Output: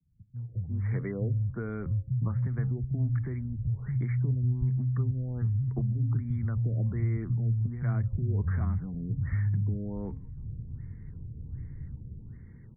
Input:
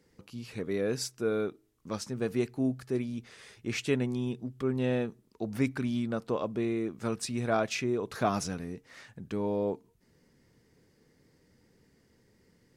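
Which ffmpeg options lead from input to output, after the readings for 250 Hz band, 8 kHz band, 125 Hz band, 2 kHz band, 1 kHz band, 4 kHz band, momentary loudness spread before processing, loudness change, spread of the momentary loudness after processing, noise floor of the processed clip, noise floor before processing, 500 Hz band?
−4.0 dB, below −35 dB, +12.5 dB, −8.5 dB, below −10 dB, below −40 dB, 12 LU, +2.0 dB, 14 LU, −48 dBFS, −68 dBFS, −12.0 dB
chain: -filter_complex "[0:a]bandreject=frequency=267.5:width_type=h:width=4,bandreject=frequency=535:width_type=h:width=4,bandreject=frequency=802.5:width_type=h:width=4,bandreject=frequency=1070:width_type=h:width=4,asubboost=boost=8:cutoff=210,acrossover=split=120[link_01][link_02];[link_01]dynaudnorm=framelen=160:gausssize=9:maxgain=15.5dB[link_03];[link_03][link_02]amix=inputs=2:normalize=0,alimiter=limit=-18dB:level=0:latency=1:release=220,equalizer=frequency=125:width_type=o:width=1:gain=6,equalizer=frequency=1000:width_type=o:width=1:gain=4,equalizer=frequency=2000:width_type=o:width=1:gain=10,equalizer=frequency=4000:width_type=o:width=1:gain=-11,acrossover=split=110|580|2200[link_04][link_05][link_06][link_07];[link_04]acompressor=threshold=-28dB:ratio=4[link_08];[link_05]acompressor=threshold=-32dB:ratio=4[link_09];[link_06]acompressor=threshold=-45dB:ratio=4[link_10];[link_07]acompressor=threshold=-56dB:ratio=4[link_11];[link_08][link_09][link_10][link_11]amix=inputs=4:normalize=0,asuperstop=centerf=2800:order=8:qfactor=2.1,acrossover=split=150[link_12][link_13];[link_13]adelay=360[link_14];[link_12][link_14]amix=inputs=2:normalize=0,afftfilt=real='re*lt(b*sr/1024,680*pow(3500/680,0.5+0.5*sin(2*PI*1.3*pts/sr)))':imag='im*lt(b*sr/1024,680*pow(3500/680,0.5+0.5*sin(2*PI*1.3*pts/sr)))':win_size=1024:overlap=0.75"

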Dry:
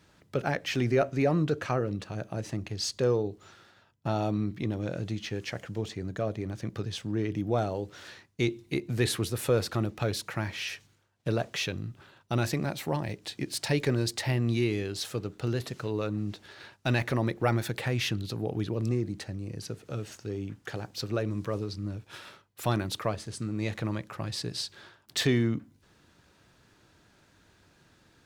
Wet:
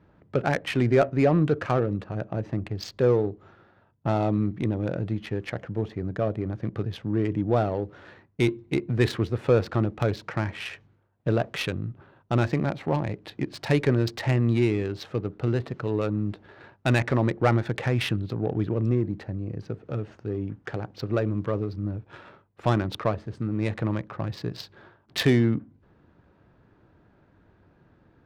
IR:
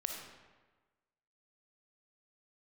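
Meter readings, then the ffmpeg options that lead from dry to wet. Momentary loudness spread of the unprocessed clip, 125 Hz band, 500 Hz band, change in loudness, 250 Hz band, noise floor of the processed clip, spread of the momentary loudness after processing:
11 LU, +5.0 dB, +5.0 dB, +4.5 dB, +5.0 dB, −61 dBFS, 11 LU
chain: -af "adynamicsmooth=sensitivity=3:basefreq=1300,volume=5dB"

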